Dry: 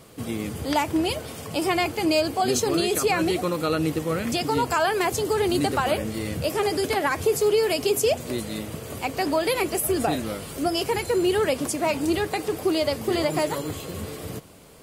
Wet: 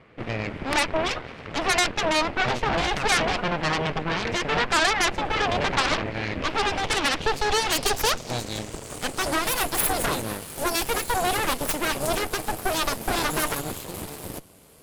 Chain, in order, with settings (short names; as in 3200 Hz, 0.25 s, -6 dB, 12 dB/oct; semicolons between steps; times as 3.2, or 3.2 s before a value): soft clip -13.5 dBFS, distortion -23 dB; low-pass sweep 2100 Hz -> 12000 Hz, 6.37–9.62; added harmonics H 3 -26 dB, 7 -13 dB, 8 -10 dB, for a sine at -9 dBFS; gain -2 dB